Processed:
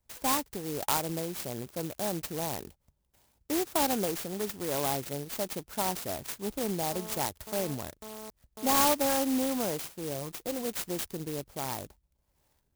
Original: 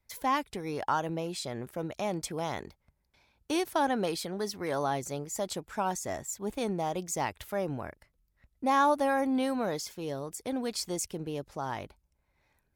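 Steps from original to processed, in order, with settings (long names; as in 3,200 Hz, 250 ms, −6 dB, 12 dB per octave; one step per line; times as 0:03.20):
0:06.92–0:08.85: phone interference −43 dBFS
0:10.14–0:10.66: comb filter 5.8 ms, depth 47%
converter with an unsteady clock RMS 0.14 ms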